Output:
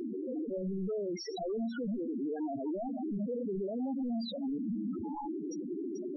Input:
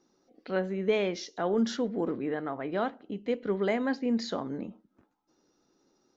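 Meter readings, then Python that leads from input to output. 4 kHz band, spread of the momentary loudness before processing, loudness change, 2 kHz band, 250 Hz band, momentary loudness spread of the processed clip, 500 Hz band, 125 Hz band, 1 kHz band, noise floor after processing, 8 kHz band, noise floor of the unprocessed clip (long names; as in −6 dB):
−7.0 dB, 7 LU, −5.5 dB, −18.5 dB, −1.5 dB, 3 LU, −6.0 dB, −2.5 dB, −7.0 dB, −41 dBFS, can't be measured, −73 dBFS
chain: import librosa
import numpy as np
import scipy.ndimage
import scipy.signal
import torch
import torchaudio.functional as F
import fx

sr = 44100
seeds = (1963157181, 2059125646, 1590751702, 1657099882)

y = np.sign(x) * np.sqrt(np.mean(np.square(x)))
y = fx.spec_topn(y, sr, count=4)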